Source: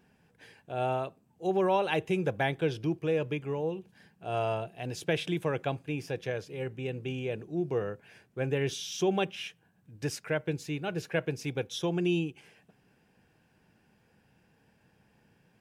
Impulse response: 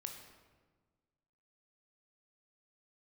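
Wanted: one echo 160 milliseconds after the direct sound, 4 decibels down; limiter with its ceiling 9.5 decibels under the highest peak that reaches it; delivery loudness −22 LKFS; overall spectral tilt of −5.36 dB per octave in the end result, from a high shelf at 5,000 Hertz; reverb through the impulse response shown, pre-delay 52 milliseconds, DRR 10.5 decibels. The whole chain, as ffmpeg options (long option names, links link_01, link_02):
-filter_complex "[0:a]highshelf=frequency=5000:gain=-4.5,alimiter=limit=-24dB:level=0:latency=1,aecho=1:1:160:0.631,asplit=2[link_01][link_02];[1:a]atrim=start_sample=2205,adelay=52[link_03];[link_02][link_03]afir=irnorm=-1:irlink=0,volume=-7.5dB[link_04];[link_01][link_04]amix=inputs=2:normalize=0,volume=11.5dB"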